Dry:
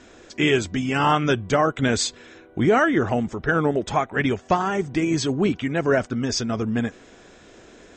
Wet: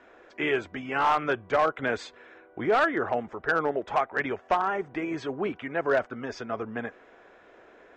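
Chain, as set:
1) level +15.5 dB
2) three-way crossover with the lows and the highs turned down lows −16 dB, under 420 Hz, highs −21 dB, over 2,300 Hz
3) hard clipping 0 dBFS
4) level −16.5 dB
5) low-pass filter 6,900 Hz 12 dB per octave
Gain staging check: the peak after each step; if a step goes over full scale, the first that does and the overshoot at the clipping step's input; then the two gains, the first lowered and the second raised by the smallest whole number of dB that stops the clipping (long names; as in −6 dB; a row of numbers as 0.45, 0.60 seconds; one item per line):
+7.0, +8.5, 0.0, −16.5, −16.0 dBFS
step 1, 8.5 dB
step 1 +6.5 dB, step 4 −7.5 dB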